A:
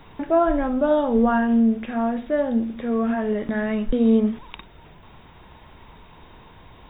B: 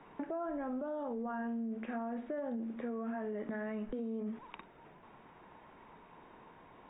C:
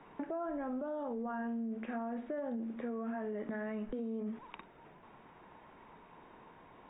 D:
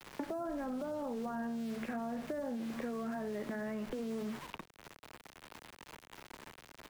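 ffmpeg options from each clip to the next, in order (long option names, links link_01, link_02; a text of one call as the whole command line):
ffmpeg -i in.wav -filter_complex "[0:a]acrossover=split=170 2500:gain=0.126 1 0.0708[link_01][link_02][link_03];[link_01][link_02][link_03]amix=inputs=3:normalize=0,alimiter=limit=-21dB:level=0:latency=1:release=39,acompressor=threshold=-29dB:ratio=6,volume=-6.5dB" out.wav
ffmpeg -i in.wav -af anull out.wav
ffmpeg -i in.wav -filter_complex "[0:a]asplit=4[link_01][link_02][link_03][link_04];[link_02]adelay=92,afreqshift=-74,volume=-21.5dB[link_05];[link_03]adelay=184,afreqshift=-148,volume=-30.6dB[link_06];[link_04]adelay=276,afreqshift=-222,volume=-39.7dB[link_07];[link_01][link_05][link_06][link_07]amix=inputs=4:normalize=0,aeval=exprs='val(0)*gte(abs(val(0)),0.00299)':channel_layout=same,acrossover=split=180|650[link_08][link_09][link_10];[link_08]acompressor=threshold=-59dB:ratio=4[link_11];[link_09]acompressor=threshold=-53dB:ratio=4[link_12];[link_10]acompressor=threshold=-56dB:ratio=4[link_13];[link_11][link_12][link_13]amix=inputs=3:normalize=0,volume=10dB" out.wav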